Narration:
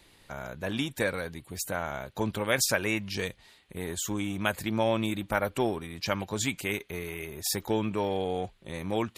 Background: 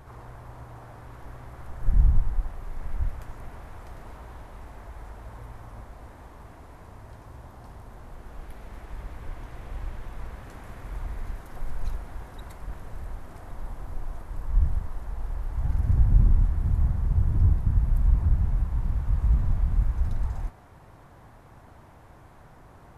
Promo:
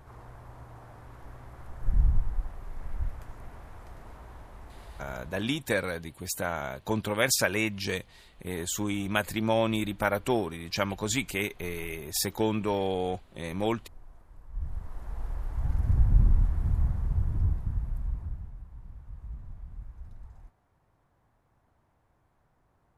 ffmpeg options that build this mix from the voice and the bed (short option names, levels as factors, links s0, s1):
-filter_complex "[0:a]adelay=4700,volume=1.12[s0];[1:a]volume=3.16,afade=t=out:st=5.21:d=0.23:silence=0.237137,afade=t=in:st=14.52:d=0.65:silence=0.199526,afade=t=out:st=16.68:d=1.86:silence=0.149624[s1];[s0][s1]amix=inputs=2:normalize=0"